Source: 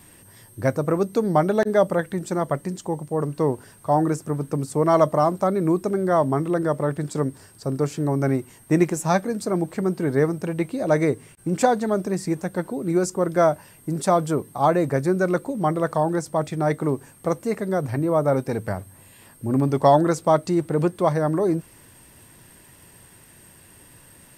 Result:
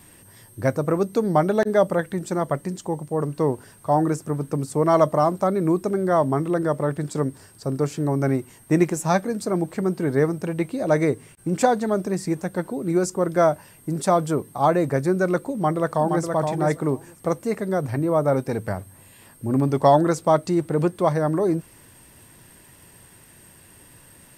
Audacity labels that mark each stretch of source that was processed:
15.520000	16.300000	delay throw 470 ms, feedback 10%, level −5 dB

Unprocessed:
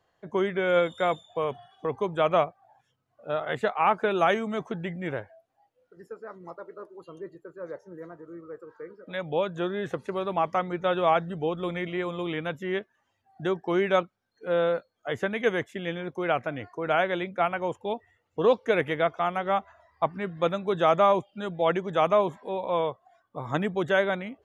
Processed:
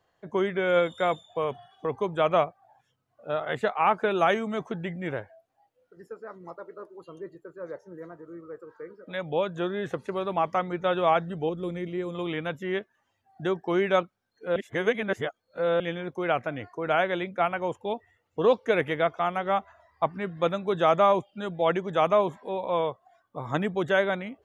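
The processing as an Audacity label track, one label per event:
11.490000	12.150000	flat-topped bell 1,500 Hz −9.5 dB 2.8 octaves
14.560000	15.800000	reverse

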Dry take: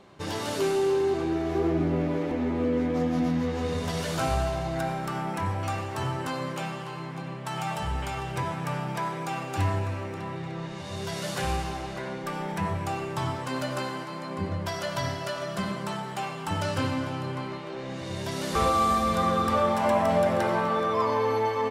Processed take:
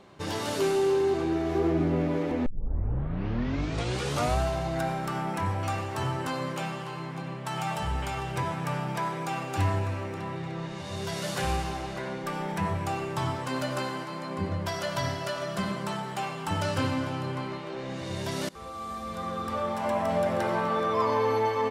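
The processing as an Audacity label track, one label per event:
2.460000	2.460000	tape start 1.93 s
18.490000	21.140000	fade in, from −23 dB

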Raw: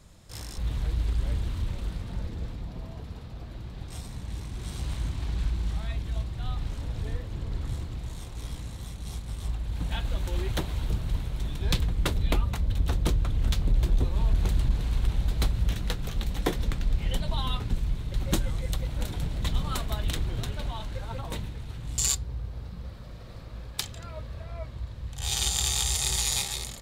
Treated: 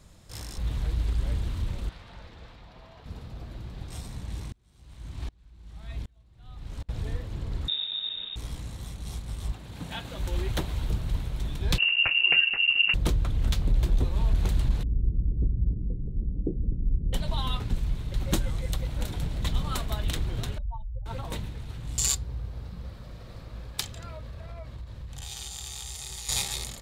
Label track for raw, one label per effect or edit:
1.890000	3.060000	three-way crossover with the lows and the highs turned down lows −14 dB, under 580 Hz, highs −13 dB, over 5,100 Hz
4.520000	6.890000	tremolo with a ramp in dB swelling 1.3 Hz, depth 34 dB
7.680000	8.360000	voice inversion scrambler carrier 3,700 Hz
9.520000	10.180000	high-pass filter 130 Hz
11.780000	12.940000	voice inversion scrambler carrier 2,800 Hz
14.830000	17.130000	inverse Chebyshev low-pass filter stop band from 1,000 Hz, stop band 50 dB
20.580000	21.060000	expanding power law on the bin magnitudes exponent 3
24.120000	26.290000	downward compressor, threshold −35 dBFS

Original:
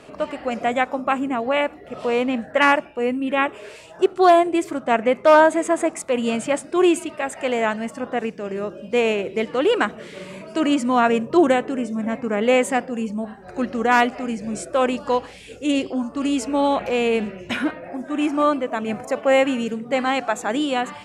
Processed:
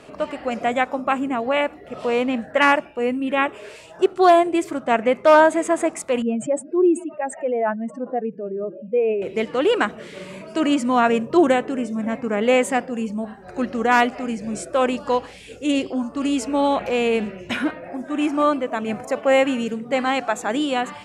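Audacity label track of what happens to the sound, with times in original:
6.220000	9.220000	expanding power law on the bin magnitudes exponent 2.1

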